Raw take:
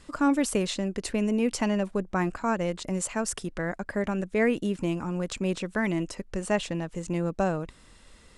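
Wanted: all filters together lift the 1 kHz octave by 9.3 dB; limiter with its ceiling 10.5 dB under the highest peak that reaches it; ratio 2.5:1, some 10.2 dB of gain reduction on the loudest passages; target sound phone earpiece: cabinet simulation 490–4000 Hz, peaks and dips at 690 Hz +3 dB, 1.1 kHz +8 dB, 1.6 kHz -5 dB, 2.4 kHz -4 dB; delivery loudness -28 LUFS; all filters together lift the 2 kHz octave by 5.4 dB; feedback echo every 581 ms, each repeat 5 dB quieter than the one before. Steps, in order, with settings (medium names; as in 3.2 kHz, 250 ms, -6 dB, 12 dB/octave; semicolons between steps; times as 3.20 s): peaking EQ 1 kHz +5 dB; peaking EQ 2 kHz +8.5 dB; compression 2.5:1, threshold -32 dBFS; peak limiter -27.5 dBFS; cabinet simulation 490–4000 Hz, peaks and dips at 690 Hz +3 dB, 1.1 kHz +8 dB, 1.6 kHz -5 dB, 2.4 kHz -4 dB; feedback delay 581 ms, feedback 56%, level -5 dB; trim +11 dB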